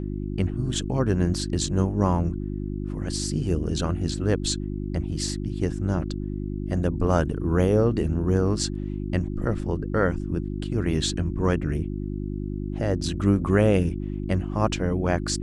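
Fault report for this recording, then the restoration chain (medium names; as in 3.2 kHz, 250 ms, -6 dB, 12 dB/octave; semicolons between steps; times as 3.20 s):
hum 50 Hz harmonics 7 -30 dBFS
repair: de-hum 50 Hz, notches 7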